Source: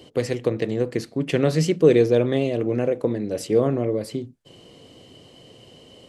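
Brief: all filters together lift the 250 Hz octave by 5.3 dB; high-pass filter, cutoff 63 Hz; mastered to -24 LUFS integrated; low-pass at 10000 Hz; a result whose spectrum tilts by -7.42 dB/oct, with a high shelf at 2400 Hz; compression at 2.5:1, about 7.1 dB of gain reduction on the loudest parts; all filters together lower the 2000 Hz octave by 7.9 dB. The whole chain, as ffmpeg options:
-af "highpass=63,lowpass=10k,equalizer=f=250:t=o:g=7,equalizer=f=2k:t=o:g=-8.5,highshelf=f=2.4k:g=-3,acompressor=threshold=-18dB:ratio=2.5,volume=-1dB"

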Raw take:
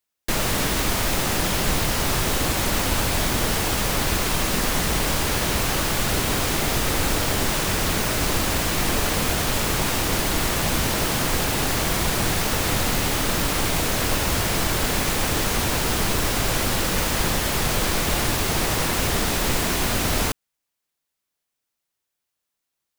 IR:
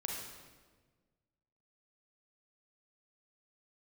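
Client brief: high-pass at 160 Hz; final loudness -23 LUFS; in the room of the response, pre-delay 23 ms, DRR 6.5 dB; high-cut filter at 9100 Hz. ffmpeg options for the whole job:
-filter_complex "[0:a]highpass=160,lowpass=9.1k,asplit=2[a][b];[1:a]atrim=start_sample=2205,adelay=23[c];[b][c]afir=irnorm=-1:irlink=0,volume=-8dB[d];[a][d]amix=inputs=2:normalize=0"

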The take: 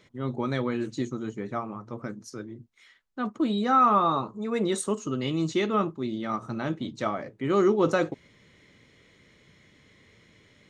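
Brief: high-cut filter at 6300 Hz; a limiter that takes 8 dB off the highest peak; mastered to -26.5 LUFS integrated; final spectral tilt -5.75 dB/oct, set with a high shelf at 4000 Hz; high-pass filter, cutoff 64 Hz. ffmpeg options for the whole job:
-af "highpass=64,lowpass=6.3k,highshelf=f=4k:g=-4.5,volume=3.5dB,alimiter=limit=-14.5dB:level=0:latency=1"

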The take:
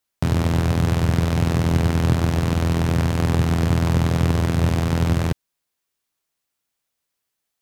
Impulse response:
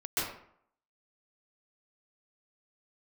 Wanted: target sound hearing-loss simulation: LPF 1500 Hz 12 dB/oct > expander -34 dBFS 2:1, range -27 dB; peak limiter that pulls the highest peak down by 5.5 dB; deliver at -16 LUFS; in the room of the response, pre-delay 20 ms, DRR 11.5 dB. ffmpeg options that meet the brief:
-filter_complex "[0:a]alimiter=limit=-11.5dB:level=0:latency=1,asplit=2[a][b];[1:a]atrim=start_sample=2205,adelay=20[c];[b][c]afir=irnorm=-1:irlink=0,volume=-19dB[d];[a][d]amix=inputs=2:normalize=0,lowpass=1.5k,agate=range=-27dB:threshold=-34dB:ratio=2,volume=7dB"

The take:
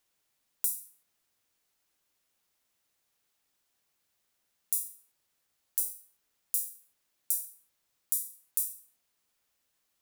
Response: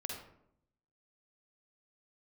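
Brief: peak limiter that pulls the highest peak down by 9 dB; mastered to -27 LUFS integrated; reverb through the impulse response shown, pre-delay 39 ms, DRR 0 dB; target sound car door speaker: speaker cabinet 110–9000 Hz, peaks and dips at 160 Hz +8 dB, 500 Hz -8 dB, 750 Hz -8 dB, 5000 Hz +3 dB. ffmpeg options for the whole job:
-filter_complex "[0:a]alimiter=limit=-13dB:level=0:latency=1,asplit=2[a][b];[1:a]atrim=start_sample=2205,adelay=39[c];[b][c]afir=irnorm=-1:irlink=0,volume=0dB[d];[a][d]amix=inputs=2:normalize=0,highpass=110,equalizer=f=160:t=q:w=4:g=8,equalizer=f=500:t=q:w=4:g=-8,equalizer=f=750:t=q:w=4:g=-8,equalizer=f=5k:t=q:w=4:g=3,lowpass=f=9k:w=0.5412,lowpass=f=9k:w=1.3066,volume=14.5dB"

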